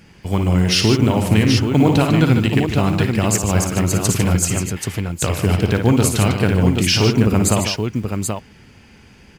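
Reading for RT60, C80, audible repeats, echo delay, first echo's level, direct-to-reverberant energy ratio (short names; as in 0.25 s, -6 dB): none, none, 4, 56 ms, -7.5 dB, none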